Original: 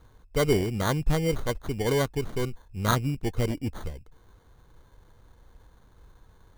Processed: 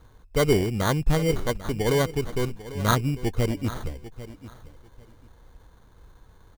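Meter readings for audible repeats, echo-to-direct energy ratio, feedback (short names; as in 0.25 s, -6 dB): 2, -15.5 dB, 19%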